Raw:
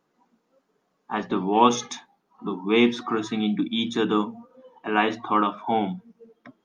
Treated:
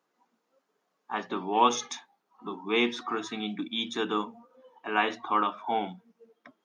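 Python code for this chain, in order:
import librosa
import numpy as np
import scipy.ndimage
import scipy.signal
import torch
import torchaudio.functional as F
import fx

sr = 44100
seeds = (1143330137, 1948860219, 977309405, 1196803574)

y = fx.highpass(x, sr, hz=550.0, slope=6)
y = y * 10.0 ** (-2.5 / 20.0)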